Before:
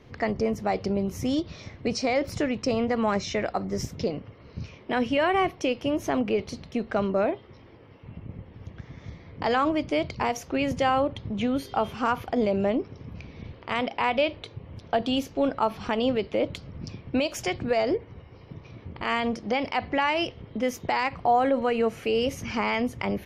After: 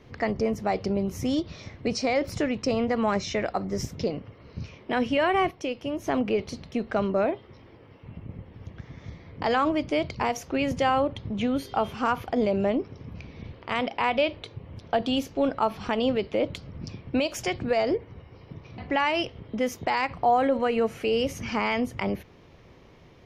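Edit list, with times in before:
0:05.51–0:06.07: clip gain −4.5 dB
0:18.78–0:19.80: remove

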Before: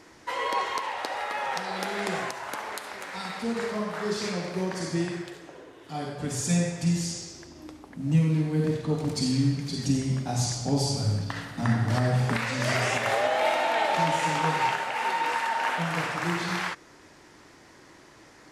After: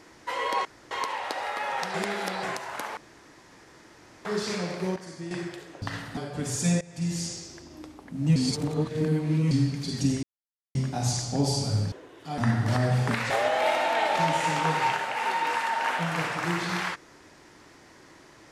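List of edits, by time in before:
0:00.65: splice in room tone 0.26 s
0:01.68–0:02.17: reverse
0:02.71–0:03.99: fill with room tone
0:04.70–0:05.05: clip gain −10 dB
0:05.56–0:06.02: swap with 0:11.25–0:11.60
0:06.66–0:07.09: fade in, from −21.5 dB
0:08.21–0:09.36: reverse
0:10.08: splice in silence 0.52 s
0:12.52–0:13.09: remove

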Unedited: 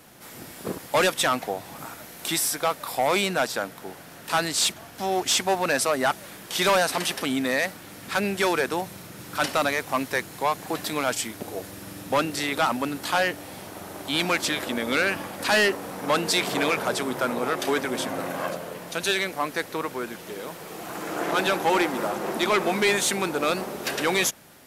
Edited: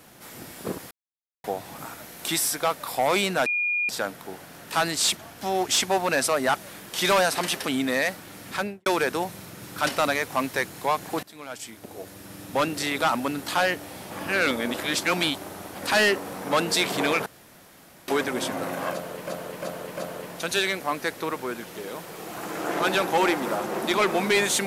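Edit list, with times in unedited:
0:00.91–0:01.44: silence
0:03.46: insert tone 2,430 Hz −22 dBFS 0.43 s
0:08.07–0:08.43: fade out and dull
0:10.80–0:12.35: fade in, from −21 dB
0:13.68–0:15.32: reverse
0:16.83–0:17.65: fill with room tone
0:18.49–0:18.84: repeat, 4 plays

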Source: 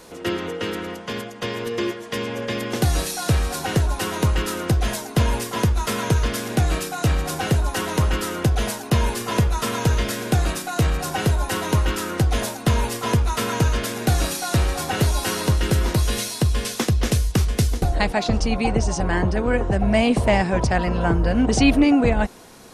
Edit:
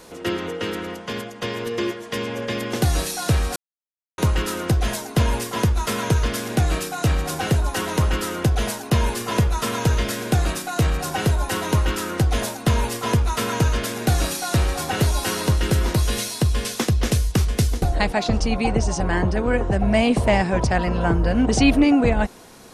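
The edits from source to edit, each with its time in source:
0:03.56–0:04.18: silence

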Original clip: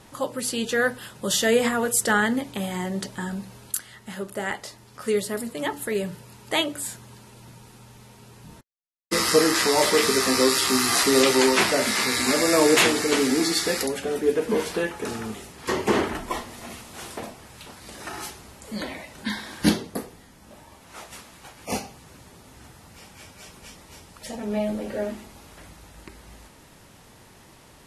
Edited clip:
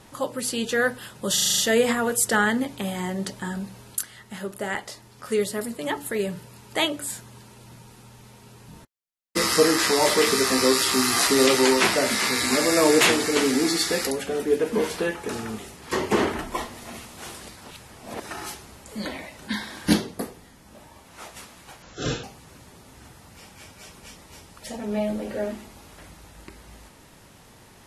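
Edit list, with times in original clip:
0:01.34: stutter 0.04 s, 7 plays
0:17.17–0:17.96: reverse
0:21.58–0:21.83: play speed 60%

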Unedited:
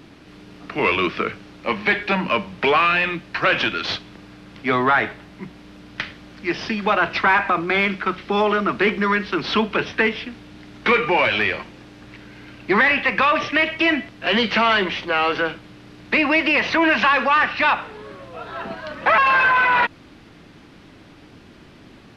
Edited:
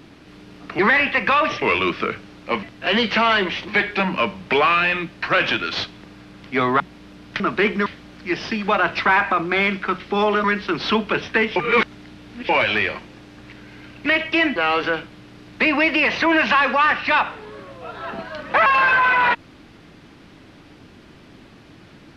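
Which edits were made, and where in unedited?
0:04.92–0:05.44: remove
0:08.62–0:09.08: move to 0:06.04
0:10.20–0:11.13: reverse
0:12.70–0:13.53: move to 0:00.79
0:14.03–0:15.08: move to 0:01.80

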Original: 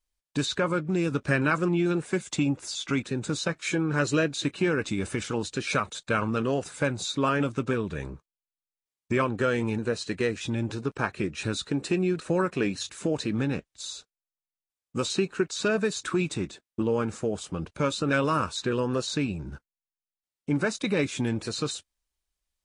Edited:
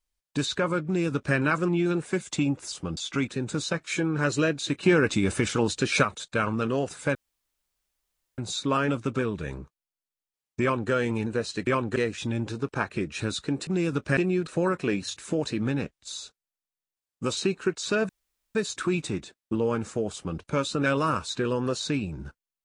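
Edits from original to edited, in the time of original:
0:00.86–0:01.36: duplicate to 0:11.90
0:04.58–0:05.78: clip gain +5 dB
0:06.90: splice in room tone 1.23 s
0:09.14–0:09.43: duplicate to 0:10.19
0:15.82: splice in room tone 0.46 s
0:17.41–0:17.66: duplicate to 0:02.72

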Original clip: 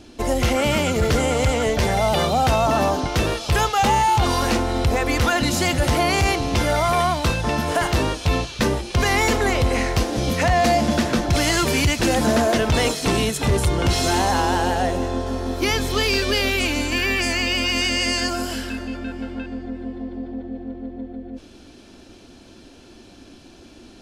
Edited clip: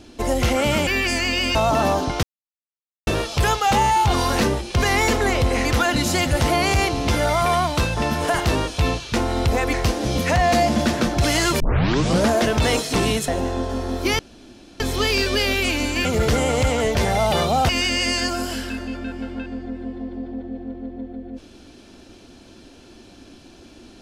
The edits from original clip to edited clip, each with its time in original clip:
0:00.87–0:02.51: swap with 0:17.01–0:17.69
0:03.19: splice in silence 0.84 s
0:04.53–0:05.12: swap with 0:08.61–0:09.85
0:11.72: tape start 0.69 s
0:13.40–0:14.85: remove
0:15.76: splice in room tone 0.61 s

